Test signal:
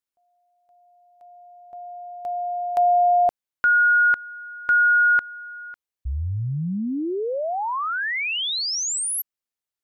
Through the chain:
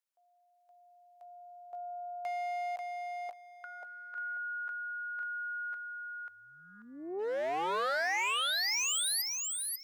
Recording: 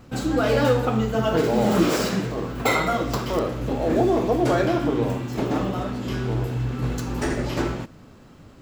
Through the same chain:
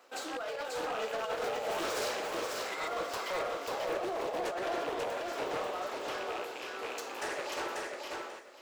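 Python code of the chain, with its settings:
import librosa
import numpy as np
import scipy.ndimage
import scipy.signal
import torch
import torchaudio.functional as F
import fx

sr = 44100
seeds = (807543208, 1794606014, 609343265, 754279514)

p1 = fx.rattle_buzz(x, sr, strikes_db=-22.0, level_db=-26.0)
p2 = scipy.signal.sosfilt(scipy.signal.butter(4, 480.0, 'highpass', fs=sr, output='sos'), p1)
p3 = fx.over_compress(p2, sr, threshold_db=-26.0, ratio=-0.5)
p4 = np.clip(10.0 ** (25.0 / 20.0) * p3, -1.0, 1.0) / 10.0 ** (25.0 / 20.0)
p5 = p4 + fx.echo_feedback(p4, sr, ms=539, feedback_pct=21, wet_db=-3, dry=0)
p6 = fx.doppler_dist(p5, sr, depth_ms=0.2)
y = F.gain(torch.from_numpy(p6), -7.0).numpy()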